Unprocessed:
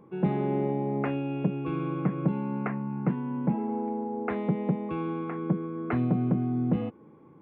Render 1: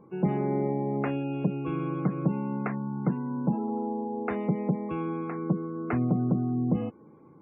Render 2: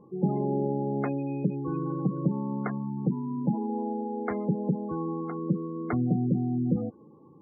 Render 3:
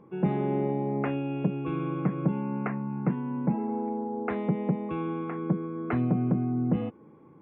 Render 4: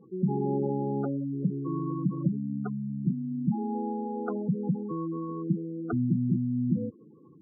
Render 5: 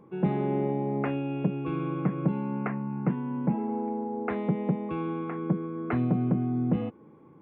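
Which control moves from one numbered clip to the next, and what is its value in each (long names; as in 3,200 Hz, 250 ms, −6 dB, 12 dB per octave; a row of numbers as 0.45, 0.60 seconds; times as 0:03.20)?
gate on every frequency bin, under each frame's peak: −35, −20, −50, −10, −60 decibels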